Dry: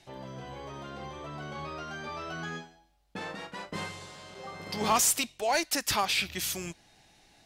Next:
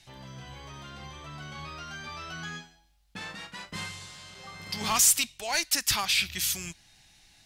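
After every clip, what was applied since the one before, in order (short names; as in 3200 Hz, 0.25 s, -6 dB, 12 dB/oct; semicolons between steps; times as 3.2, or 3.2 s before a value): bell 470 Hz -14.5 dB 2.6 oct; gain +5 dB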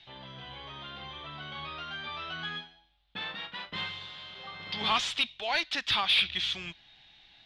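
synth low-pass 3500 Hz, resonance Q 5; overdrive pedal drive 10 dB, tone 1000 Hz, clips at -4.5 dBFS; gain -1 dB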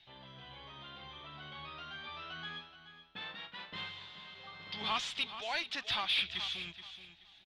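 feedback echo 0.427 s, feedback 24%, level -12 dB; gain -7 dB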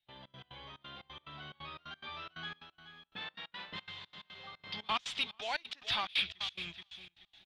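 step gate ".xx.x.xxx" 178 bpm -24 dB; gain +1 dB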